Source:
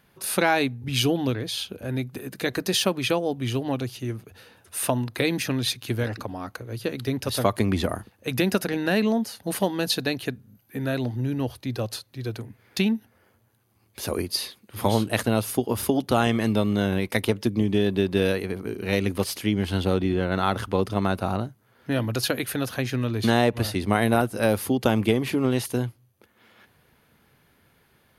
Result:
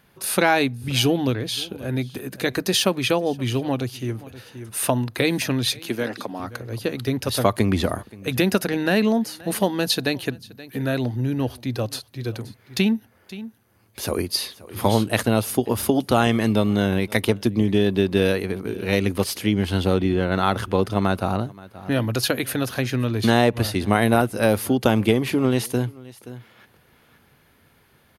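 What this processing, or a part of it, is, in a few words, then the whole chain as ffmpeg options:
ducked delay: -filter_complex "[0:a]asplit=3[link_01][link_02][link_03];[link_02]adelay=526,volume=-8dB[link_04];[link_03]apad=whole_len=1266008[link_05];[link_04][link_05]sidechaincompress=threshold=-40dB:ratio=5:attack=10:release=544[link_06];[link_01][link_06]amix=inputs=2:normalize=0,asettb=1/sr,asplit=3[link_07][link_08][link_09];[link_07]atrim=end=5.794[link_10];[link_08]atrim=start=5.79:end=6.4,asetpts=PTS-STARTPTS,afade=type=in:duration=0.004:curve=qsin,afade=type=out:start_time=0.606:duration=0.004:curve=qsin,highpass=frequency=170:width=0.5412,highpass=frequency=170:width=1.3066[link_11];[link_09]atrim=start=6.396[link_12];[link_10][link_11]acrossfade=duration=0.004:curve1=hsin:curve2=qsin[link_13];[link_13][link_12]acrossfade=duration=0.004:curve1=qsin:curve2=hsin,volume=3dB"

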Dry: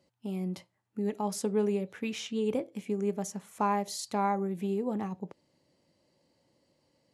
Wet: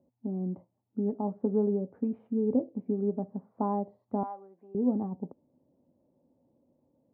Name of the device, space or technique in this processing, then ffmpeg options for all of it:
under water: -filter_complex "[0:a]asettb=1/sr,asplit=3[link_01][link_02][link_03];[link_01]atrim=end=4.234[link_04];[link_02]atrim=start=4.23:end=4.75,asetpts=PTS-STARTPTS,afade=type=in:duration=0.004:curve=qsin,afade=type=out:start_time=0.516:duration=0.004:curve=qsin,highpass=1100[link_05];[link_03]atrim=start=4.746[link_06];[link_04][link_05]acrossfade=duration=0.004:curve1=hsin:curve2=qsin[link_07];[link_07][link_06]acrossfade=duration=0.004:curve1=qsin:curve2=hsin,lowpass=frequency=830:width=0.5412,lowpass=frequency=830:width=1.3066,equalizer=frequency=250:width_type=o:width=0.27:gain=10.5"

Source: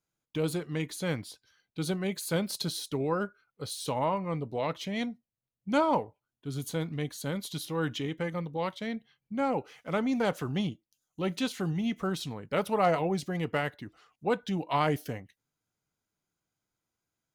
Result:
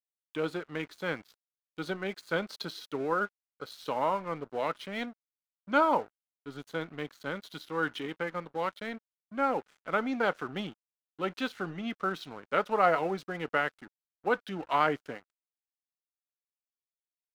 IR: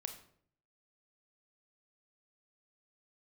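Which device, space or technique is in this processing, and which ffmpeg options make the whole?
pocket radio on a weak battery: -af "highpass=270,lowpass=3900,aeval=exprs='sgn(val(0))*max(abs(val(0))-0.00299,0)':channel_layout=same,equalizer=frequency=1400:width_type=o:width=0.51:gain=8"

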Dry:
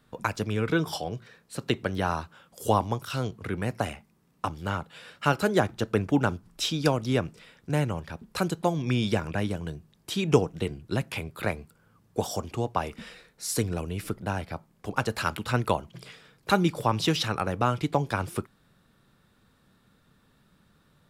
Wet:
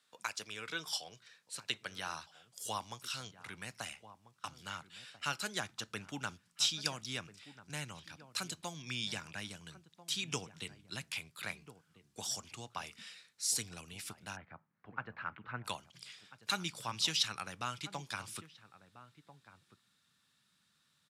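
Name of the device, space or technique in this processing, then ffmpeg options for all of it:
piezo pickup straight into a mixer: -filter_complex "[0:a]highpass=91,lowpass=6700,aderivative,asplit=2[link_01][link_02];[link_02]adelay=1341,volume=-14dB,highshelf=frequency=4000:gain=-30.2[link_03];[link_01][link_03]amix=inputs=2:normalize=0,asubboost=boost=6.5:cutoff=170,asplit=3[link_04][link_05][link_06];[link_04]afade=type=out:start_time=14.35:duration=0.02[link_07];[link_05]lowpass=frequency=1800:width=0.5412,lowpass=frequency=1800:width=1.3066,afade=type=in:start_time=14.35:duration=0.02,afade=type=out:start_time=15.64:duration=0.02[link_08];[link_06]afade=type=in:start_time=15.64:duration=0.02[link_09];[link_07][link_08][link_09]amix=inputs=3:normalize=0,volume=4dB"

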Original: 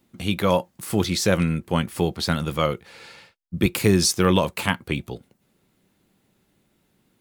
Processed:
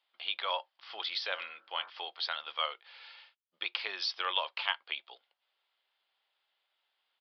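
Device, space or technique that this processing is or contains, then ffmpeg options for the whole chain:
musical greeting card: -filter_complex "[0:a]asettb=1/sr,asplit=3[link_01][link_02][link_03];[link_01]atrim=end=1.324[link_04];[link_02]atrim=start=1.32:end=1.9,asetpts=PTS-STARTPTS,afade=type=in:duration=0.004:curve=qsin,afade=type=out:start_time=0.576:duration=0.004:curve=qsin,bandreject=frequency=46.31:width_type=h:width=4,bandreject=frequency=92.62:width_type=h:width=4,bandreject=frequency=138.93:width_type=h:width=4,bandreject=frequency=185.24:width_type=h:width=4,bandreject=frequency=231.55:width_type=h:width=4,bandreject=frequency=277.86:width_type=h:width=4,bandreject=frequency=324.17:width_type=h:width=4,bandreject=frequency=370.48:width_type=h:width=4,bandreject=frequency=416.79:width_type=h:width=4,bandreject=frequency=463.1:width_type=h:width=4,bandreject=frequency=509.41:width_type=h:width=4,bandreject=frequency=555.72:width_type=h:width=4,bandreject=frequency=602.03:width_type=h:width=4,bandreject=frequency=648.34:width_type=h:width=4,bandreject=frequency=694.65:width_type=h:width=4,bandreject=frequency=740.96:width_type=h:width=4,bandreject=frequency=787.27:width_type=h:width=4,bandreject=frequency=833.58:width_type=h:width=4,bandreject=frequency=879.89:width_type=h:width=4,bandreject=frequency=926.2:width_type=h:width=4,bandreject=frequency=972.51:width_type=h:width=4,bandreject=frequency=1018.82:width_type=h:width=4,bandreject=frequency=1065.13:width_type=h:width=4,bandreject=frequency=1111.44:width_type=h:width=4,bandreject=frequency=1157.75:width_type=h:width=4,bandreject=frequency=1204.06:width_type=h:width=4,bandreject=frequency=1250.37:width_type=h:width=4,bandreject=frequency=1296.68:width_type=h:width=4,bandreject=frequency=1342.99:width_type=h:width=4,bandreject=frequency=1389.3:width_type=h:width=4,bandreject=frequency=1435.61:width_type=h:width=4,bandreject=frequency=1481.92:width_type=h:width=4,bandreject=frequency=1528.23:width_type=h:width=4,bandreject=frequency=1574.54:width_type=h:width=4,bandreject=frequency=1620.85:width_type=h:width=4,bandreject=frequency=1667.16:width_type=h:width=4,bandreject=frequency=1713.47:width_type=h:width=4,bandreject=frequency=1759.78:width_type=h:width=4,bandreject=frequency=1806.09:width_type=h:width=4[link_05];[link_03]atrim=start=1.896[link_06];[link_04][link_05]acrossfade=duration=0.004:curve1=hsin:curve2=qsin[link_07];[link_07][link_06]acrossfade=duration=0.004:curve1=qsin:curve2=hsin,aresample=11025,aresample=44100,highpass=frequency=730:width=0.5412,highpass=frequency=730:width=1.3066,equalizer=frequency=3200:width_type=o:width=0.36:gain=9,volume=-9dB"

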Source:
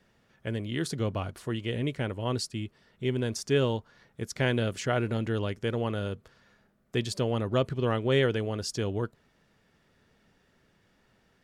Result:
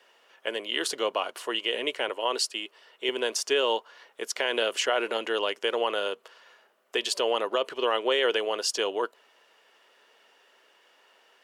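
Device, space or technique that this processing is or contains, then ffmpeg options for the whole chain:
laptop speaker: -filter_complex "[0:a]highpass=frequency=430:width=0.5412,highpass=frequency=430:width=1.3066,equalizer=frequency=1000:width_type=o:width=0.32:gain=5,equalizer=frequency=2900:width_type=o:width=0.25:gain=9,alimiter=limit=-21dB:level=0:latency=1:release=50,asettb=1/sr,asplit=3[link_01][link_02][link_03];[link_01]atrim=end=2.094[link_04];[link_02]atrim=start=2.09:end=3.09,asetpts=PTS-STARTPTS,afade=type=in:duration=0.004:curve=qsin,afade=type=out:start_time=0.996:duration=0.004:curve=qsin,highpass=220[link_05];[link_03]atrim=start=3.086[link_06];[link_04][link_05]acrossfade=duration=0.004:curve1=hsin:curve2=qsin[link_07];[link_07][link_06]acrossfade=duration=0.004:curve1=qsin:curve2=hsin,volume=7dB"

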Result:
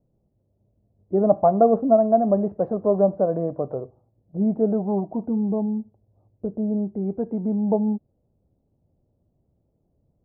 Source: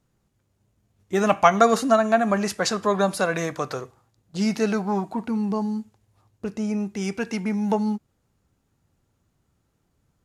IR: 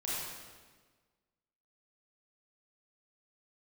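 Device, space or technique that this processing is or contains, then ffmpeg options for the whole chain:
under water: -af "lowpass=frequency=670:width=0.5412,lowpass=frequency=670:width=1.3066,equalizer=frequency=610:width_type=o:width=0.45:gain=5.5,volume=1.5dB"

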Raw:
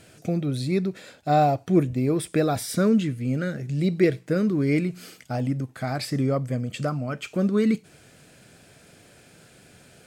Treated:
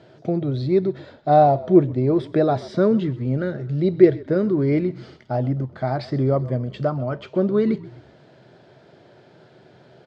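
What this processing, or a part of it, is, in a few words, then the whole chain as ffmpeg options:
frequency-shifting delay pedal into a guitar cabinet: -filter_complex "[0:a]asplit=5[link_01][link_02][link_03][link_04][link_05];[link_02]adelay=128,afreqshift=-50,volume=-19dB[link_06];[link_03]adelay=256,afreqshift=-100,volume=-25.9dB[link_07];[link_04]adelay=384,afreqshift=-150,volume=-32.9dB[link_08];[link_05]adelay=512,afreqshift=-200,volume=-39.8dB[link_09];[link_01][link_06][link_07][link_08][link_09]amix=inputs=5:normalize=0,highpass=100,equalizer=frequency=130:width_type=q:width=4:gain=7,equalizer=frequency=370:width_type=q:width=4:gain=10,equalizer=frequency=620:width_type=q:width=4:gain=8,equalizer=frequency=910:width_type=q:width=4:gain=9,equalizer=frequency=2500:width_type=q:width=4:gain=-9,lowpass=frequency=4300:width=0.5412,lowpass=frequency=4300:width=1.3066,volume=-1dB"

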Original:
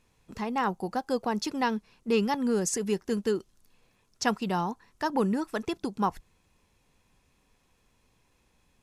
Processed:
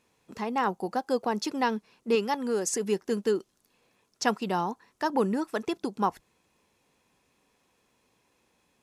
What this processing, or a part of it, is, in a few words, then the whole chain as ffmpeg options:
filter by subtraction: -filter_complex "[0:a]asettb=1/sr,asplit=3[link_01][link_02][link_03];[link_01]atrim=end=2.154[link_04];[link_02]atrim=start=2.15:end=2.67,asetpts=PTS-STARTPTS,afade=type=in:duration=0.004:curve=qsin,afade=type=out:start_time=0.516:duration=0.004:curve=qsin,equalizer=frequency=130:width=0.75:gain=-9[link_05];[link_03]atrim=start=2.666[link_06];[link_04][link_05]acrossfade=duration=0.004:curve1=hsin:curve2=qsin[link_07];[link_07][link_06]acrossfade=duration=0.004:curve1=qsin:curve2=hsin,asplit=2[link_08][link_09];[link_09]lowpass=370,volume=-1[link_10];[link_08][link_10]amix=inputs=2:normalize=0"

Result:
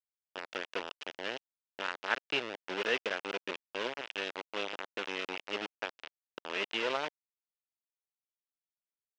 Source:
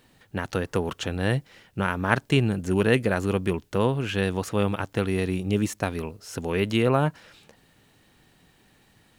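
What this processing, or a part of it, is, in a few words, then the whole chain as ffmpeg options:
hand-held game console: -filter_complex "[0:a]highpass=frequency=200:poles=1,asettb=1/sr,asplit=3[link_01][link_02][link_03];[link_01]atrim=end=3.434[link_04];[link_02]atrim=start=3.43:end=3.95,asetpts=PTS-STARTPTS,afade=type=in:duration=0.004:curve=qsin,afade=type=out:start_time=0.516:duration=0.004:curve=qsin,equalizer=frequency=920:width=1.8:gain=-5.5[link_05];[link_03]atrim=start=3.946[link_06];[link_04][link_05]acrossfade=duration=0.004:curve1=hsin:curve2=qsin[link_07];[link_07][link_06]acrossfade=duration=0.004:curve1=qsin:curve2=hsin,acrusher=bits=3:mix=0:aa=0.000001,highpass=490,equalizer=frequency=750:width_type=q:width=4:gain=-4,equalizer=frequency=1100:width_type=q:width=4:gain=-4,equalizer=frequency=2800:width_type=q:width=4:gain=4,equalizer=frequency=4300:width_type=q:width=4:gain=-5,lowpass=frequency=4700:width=0.5412,lowpass=frequency=4700:width=1.3066,volume=-7dB"

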